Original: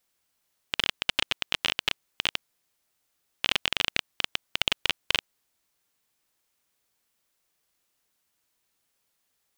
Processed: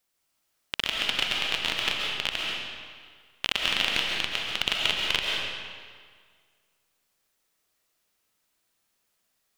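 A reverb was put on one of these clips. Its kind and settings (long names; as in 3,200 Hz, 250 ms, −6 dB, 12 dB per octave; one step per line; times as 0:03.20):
comb and all-pass reverb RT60 1.8 s, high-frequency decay 0.85×, pre-delay 95 ms, DRR −2 dB
level −2 dB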